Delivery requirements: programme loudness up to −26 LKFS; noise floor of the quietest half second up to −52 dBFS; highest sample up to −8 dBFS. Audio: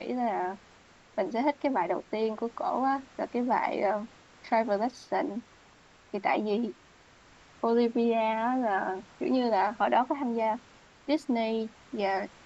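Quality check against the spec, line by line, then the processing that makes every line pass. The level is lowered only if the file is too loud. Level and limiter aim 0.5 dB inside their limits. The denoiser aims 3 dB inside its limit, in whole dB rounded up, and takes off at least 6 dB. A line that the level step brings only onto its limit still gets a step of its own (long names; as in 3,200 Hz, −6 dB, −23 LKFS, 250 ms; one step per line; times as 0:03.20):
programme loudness −29.5 LKFS: in spec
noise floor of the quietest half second −58 dBFS: in spec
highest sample −13.5 dBFS: in spec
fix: no processing needed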